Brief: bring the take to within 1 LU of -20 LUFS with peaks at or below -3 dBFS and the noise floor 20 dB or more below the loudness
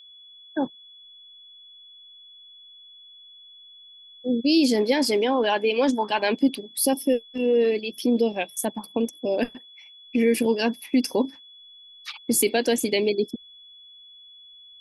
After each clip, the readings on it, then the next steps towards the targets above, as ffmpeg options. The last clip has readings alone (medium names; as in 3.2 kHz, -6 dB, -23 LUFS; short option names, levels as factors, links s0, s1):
steady tone 3.4 kHz; tone level -46 dBFS; loudness -23.5 LUFS; peak level -8.5 dBFS; loudness target -20.0 LUFS
-> -af "bandreject=f=3400:w=30"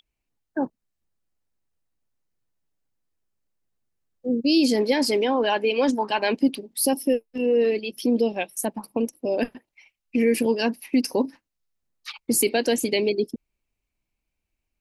steady tone not found; loudness -23.5 LUFS; peak level -8.5 dBFS; loudness target -20.0 LUFS
-> -af "volume=1.5"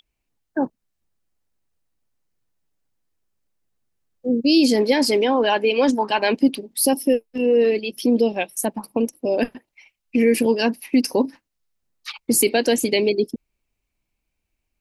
loudness -20.0 LUFS; peak level -5.0 dBFS; noise floor -79 dBFS